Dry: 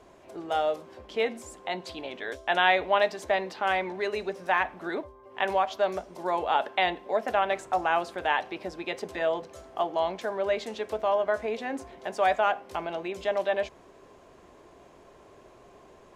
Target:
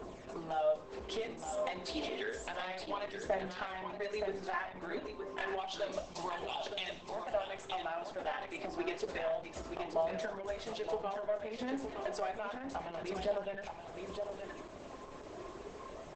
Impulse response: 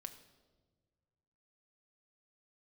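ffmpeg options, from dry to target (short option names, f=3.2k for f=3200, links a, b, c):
-filter_complex "[0:a]asplit=3[a][b][c];[a]afade=t=out:st=5.57:d=0.02[d];[b]highshelf=f=2.2k:t=q:w=1.5:g=7.5,afade=t=in:st=5.57:d=0.02,afade=t=out:st=7.13:d=0.02[e];[c]afade=t=in:st=7.13:d=0.02[f];[d][e][f]amix=inputs=3:normalize=0,acompressor=threshold=-40dB:ratio=6,aeval=exprs='0.075*(cos(1*acos(clip(val(0)/0.075,-1,1)))-cos(1*PI/2))+0.000531*(cos(2*acos(clip(val(0)/0.075,-1,1)))-cos(2*PI/2))+0.00106*(cos(3*acos(clip(val(0)/0.075,-1,1)))-cos(3*PI/2))+0.00841*(cos(5*acos(clip(val(0)/0.075,-1,1)))-cos(5*PI/2))+0.00299*(cos(6*acos(clip(val(0)/0.075,-1,1)))-cos(6*PI/2))':c=same,aphaser=in_gain=1:out_gain=1:delay=3.9:decay=0.54:speed=0.3:type=triangular,aecho=1:1:921:0.473[g];[1:a]atrim=start_sample=2205,atrim=end_sample=6615,asetrate=48510,aresample=44100[h];[g][h]afir=irnorm=-1:irlink=0,volume=5.5dB" -ar 48000 -c:a libopus -b:a 10k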